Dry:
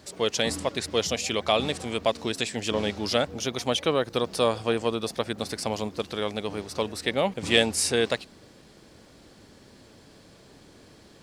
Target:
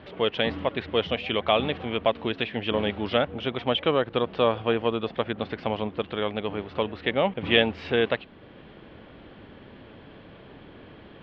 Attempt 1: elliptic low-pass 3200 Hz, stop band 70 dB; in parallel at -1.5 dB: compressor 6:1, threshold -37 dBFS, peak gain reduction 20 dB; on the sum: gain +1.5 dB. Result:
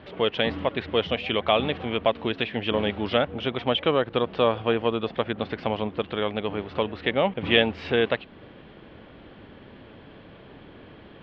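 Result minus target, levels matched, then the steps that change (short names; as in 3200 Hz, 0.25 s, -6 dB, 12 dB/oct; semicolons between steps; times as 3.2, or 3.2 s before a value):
compressor: peak gain reduction -9 dB
change: compressor 6:1, threshold -48 dBFS, peak gain reduction 29 dB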